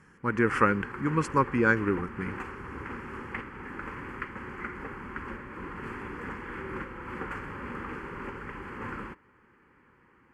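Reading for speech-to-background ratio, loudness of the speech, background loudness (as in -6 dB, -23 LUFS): 12.0 dB, -27.0 LUFS, -39.0 LUFS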